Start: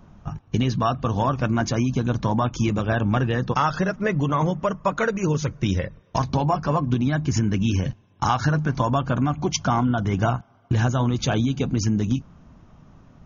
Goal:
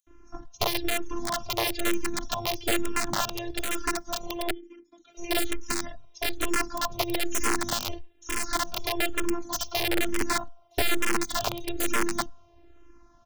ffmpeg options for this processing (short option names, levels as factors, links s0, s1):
-filter_complex "[0:a]highshelf=f=5200:g=7,acrossover=split=260|920|2300[s0][s1][s2][s3];[s0]aeval=exprs='abs(val(0))':c=same[s4];[s2]acompressor=threshold=0.00631:ratio=5[s5];[s4][s1][s5][s3]amix=inputs=4:normalize=0,asplit=3[s6][s7][s8];[s6]afade=t=out:st=4.43:d=0.02[s9];[s7]asplit=3[s10][s11][s12];[s10]bandpass=f=270:t=q:w=8,volume=1[s13];[s11]bandpass=f=2290:t=q:w=8,volume=0.501[s14];[s12]bandpass=f=3010:t=q:w=8,volume=0.355[s15];[s13][s14][s15]amix=inputs=3:normalize=0,afade=t=in:st=4.43:d=0.02,afade=t=out:st=5.1:d=0.02[s16];[s8]afade=t=in:st=5.1:d=0.02[s17];[s9][s16][s17]amix=inputs=3:normalize=0,asettb=1/sr,asplit=3[s18][s19][s20];[s18]atrim=end=9.234[s21];[s19]atrim=start=9.23:end=9.84,asetpts=PTS-STARTPTS,afade=t=in:d=0.004:c=qsin,afade=t=out:st=0.606:d=0.004:c=qsin,afreqshift=36[s22];[s20]atrim=start=9.836[s23];[s21][s22]acrossfade=d=0.004:c1=hsin:c2=qsin[s24];[s24][s23]acrossfade=d=0.004:c1=qsin:c2=hsin,asettb=1/sr,asplit=3[s25][s26][s27];[s25]atrim=end=10.894[s28];[s26]atrim=start=10.89:end=11.61,asetpts=PTS-STARTPTS,afade=t=in:d=0.004:c=qsin,afade=t=out:st=0.716:d=0.004:c=qsin,adynamicsmooth=sensitivity=3:basefreq=2100[s29];[s27]atrim=start=11.606[s30];[s28][s29]acrossfade=d=0.004:c1=hsin:c2=qsin[s31];[s31][s30]acrossfade=d=0.004:c1=qsin:c2=hsin,acrossover=split=5400[s32][s33];[s32]adelay=70[s34];[s34][s33]amix=inputs=2:normalize=0,afftfilt=real='hypot(re,im)*cos(PI*b)':imag='0':win_size=512:overlap=0.75,aeval=exprs='(mod(7.08*val(0)+1,2)-1)/7.08':c=same,asplit=2[s35][s36];[s36]afreqshift=-1.1[s37];[s35][s37]amix=inputs=2:normalize=1,volume=1.26"